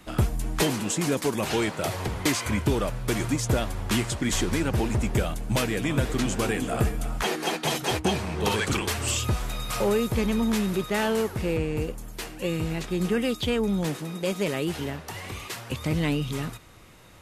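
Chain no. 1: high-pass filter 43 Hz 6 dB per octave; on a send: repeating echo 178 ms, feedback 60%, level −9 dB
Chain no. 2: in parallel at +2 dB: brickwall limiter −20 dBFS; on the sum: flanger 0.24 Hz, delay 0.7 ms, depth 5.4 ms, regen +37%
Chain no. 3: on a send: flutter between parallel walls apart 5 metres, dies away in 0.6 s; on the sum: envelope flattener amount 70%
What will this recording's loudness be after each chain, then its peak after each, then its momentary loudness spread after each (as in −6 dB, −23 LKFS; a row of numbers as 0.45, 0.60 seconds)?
−26.5, −25.5, −19.0 LKFS; −9.0, −10.0, −4.5 dBFS; 7, 7, 3 LU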